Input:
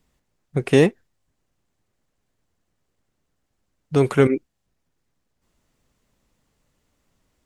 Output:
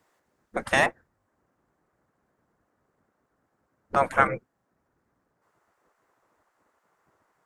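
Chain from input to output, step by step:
gate on every frequency bin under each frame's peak −15 dB weak
high shelf with overshoot 2,100 Hz −7 dB, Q 1.5, from 0:00.86 −13 dB
level +7 dB

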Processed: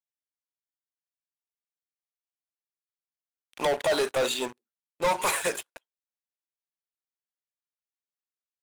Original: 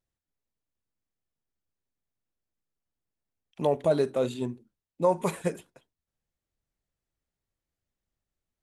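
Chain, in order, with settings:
high-pass filter 850 Hz 12 dB per octave
leveller curve on the samples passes 5
level −2 dB

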